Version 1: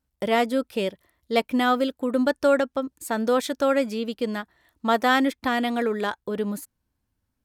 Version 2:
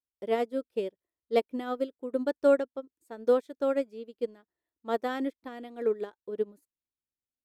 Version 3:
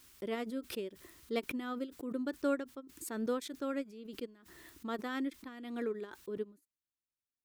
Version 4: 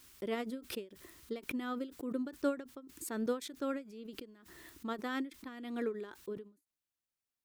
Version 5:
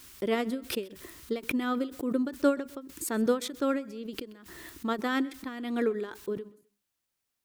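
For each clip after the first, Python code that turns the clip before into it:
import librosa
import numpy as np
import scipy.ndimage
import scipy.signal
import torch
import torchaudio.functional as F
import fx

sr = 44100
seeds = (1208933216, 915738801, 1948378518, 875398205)

y1 = fx.peak_eq(x, sr, hz=400.0, db=13.0, octaves=1.2)
y1 = fx.upward_expand(y1, sr, threshold_db=-24.0, expansion=2.5)
y1 = F.gain(torch.from_numpy(y1), -9.0).numpy()
y2 = fx.band_shelf(y1, sr, hz=630.0, db=-8.5, octaves=1.2)
y2 = fx.pre_swell(y2, sr, db_per_s=50.0)
y2 = F.gain(torch.from_numpy(y2), -4.5).numpy()
y3 = fx.end_taper(y2, sr, db_per_s=200.0)
y3 = F.gain(torch.from_numpy(y3), 1.0).numpy()
y4 = fx.echo_feedback(y3, sr, ms=129, feedback_pct=34, wet_db=-22.5)
y4 = F.gain(torch.from_numpy(y4), 8.5).numpy()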